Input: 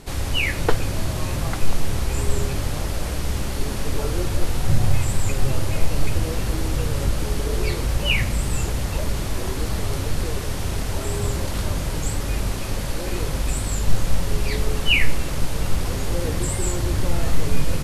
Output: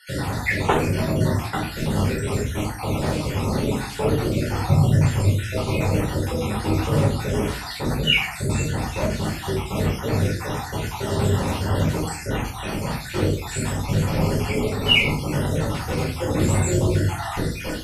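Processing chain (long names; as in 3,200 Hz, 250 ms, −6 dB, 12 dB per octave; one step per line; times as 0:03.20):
time-frequency cells dropped at random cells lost 56%
high-pass filter 110 Hz 12 dB per octave
high-shelf EQ 3,800 Hz −6.5 dB
rectangular room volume 380 cubic metres, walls furnished, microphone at 4.6 metres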